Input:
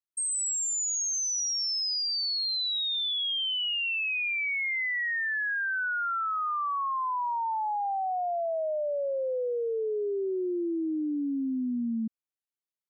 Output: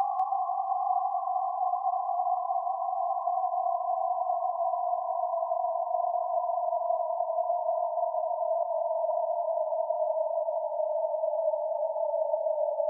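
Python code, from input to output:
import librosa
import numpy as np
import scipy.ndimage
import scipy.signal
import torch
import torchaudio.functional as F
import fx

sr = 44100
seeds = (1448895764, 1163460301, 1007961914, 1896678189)

y = x + 10.0 ** (-9.0 / 20.0) * np.pad(x, (int(1090 * sr / 1000.0), 0))[:len(x)]
y = fx.spec_topn(y, sr, count=4)
y = fx.paulstretch(y, sr, seeds[0], factor=19.0, window_s=1.0, from_s=8.02)
y = y + 10.0 ** (-10.5 / 20.0) * np.pad(y, (int(195 * sr / 1000.0), 0))[:len(y)]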